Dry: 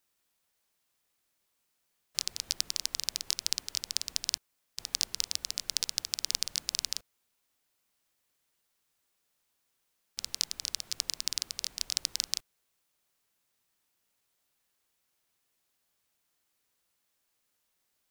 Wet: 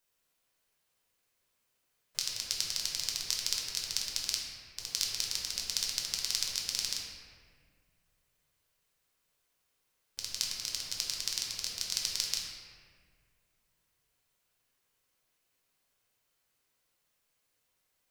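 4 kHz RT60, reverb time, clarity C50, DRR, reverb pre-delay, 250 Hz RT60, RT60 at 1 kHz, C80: 1.2 s, 1.8 s, 1.0 dB, -2.0 dB, 7 ms, 2.2 s, 1.6 s, 2.5 dB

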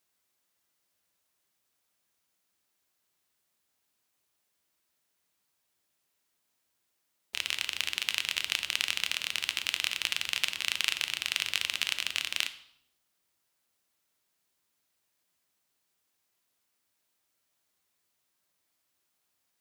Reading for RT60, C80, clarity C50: 0.70 s, 16.5 dB, 14.0 dB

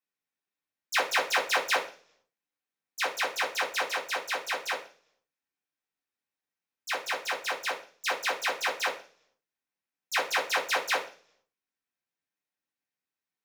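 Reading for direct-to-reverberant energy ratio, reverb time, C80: -4.0 dB, 0.45 s, 16.5 dB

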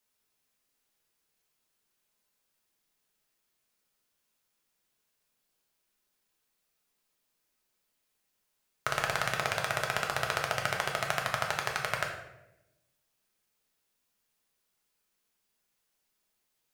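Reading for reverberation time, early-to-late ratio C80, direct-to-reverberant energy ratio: 0.95 s, 8.0 dB, 0.0 dB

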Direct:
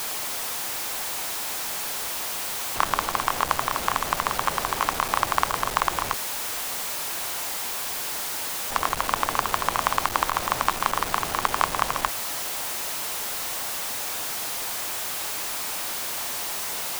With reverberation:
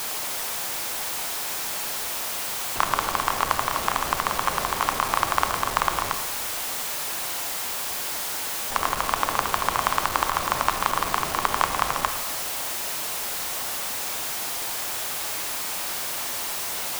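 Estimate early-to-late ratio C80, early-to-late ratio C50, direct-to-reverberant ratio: 10.5 dB, 9.0 dB, 7.5 dB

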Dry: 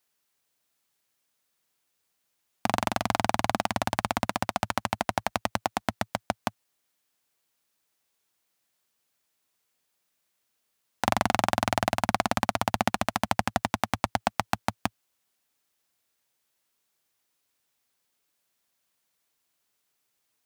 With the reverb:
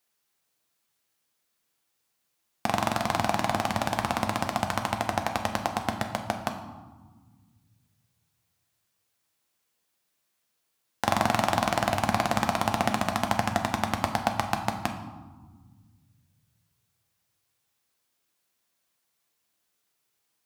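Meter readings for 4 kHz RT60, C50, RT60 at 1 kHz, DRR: 0.80 s, 8.5 dB, 1.4 s, 4.0 dB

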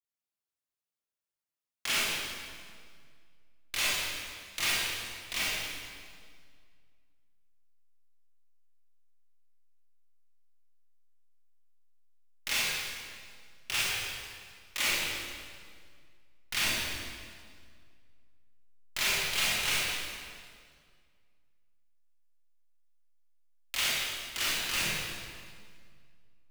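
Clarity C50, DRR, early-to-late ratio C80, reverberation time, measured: -4.0 dB, -9.0 dB, -1.5 dB, 2.0 s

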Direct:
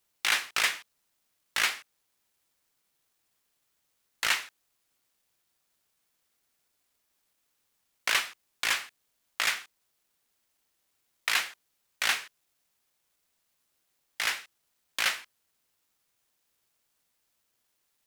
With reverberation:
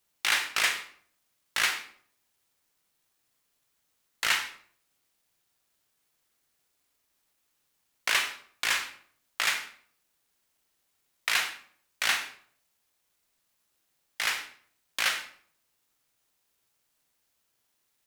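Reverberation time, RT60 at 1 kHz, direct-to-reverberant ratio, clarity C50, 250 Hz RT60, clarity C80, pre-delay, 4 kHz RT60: 0.55 s, 0.55 s, 6.0 dB, 9.5 dB, 0.65 s, 13.5 dB, 29 ms, 0.40 s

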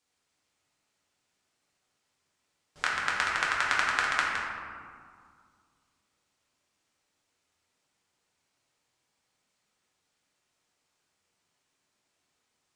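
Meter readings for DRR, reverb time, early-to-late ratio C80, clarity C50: -5.5 dB, 2.1 s, 2.0 dB, 0.0 dB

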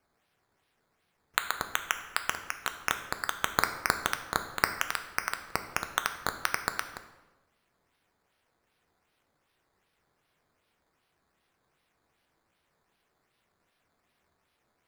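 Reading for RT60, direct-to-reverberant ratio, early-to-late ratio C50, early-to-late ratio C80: 1.1 s, 7.0 dB, 10.5 dB, 12.5 dB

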